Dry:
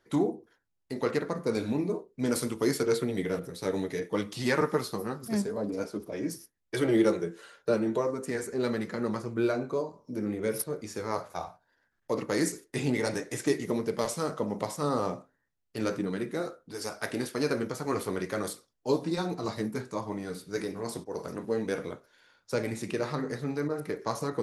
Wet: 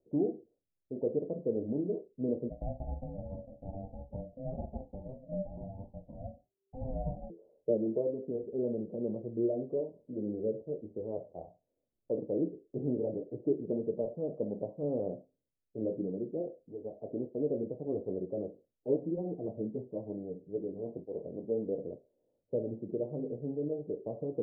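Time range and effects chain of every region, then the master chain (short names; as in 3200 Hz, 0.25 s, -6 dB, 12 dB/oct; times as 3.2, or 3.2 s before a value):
2.49–7.3 ring modulator 390 Hz + doubler 44 ms -12 dB + cascading phaser rising 1.1 Hz
whole clip: steep low-pass 630 Hz 48 dB/oct; low shelf 320 Hz -7 dB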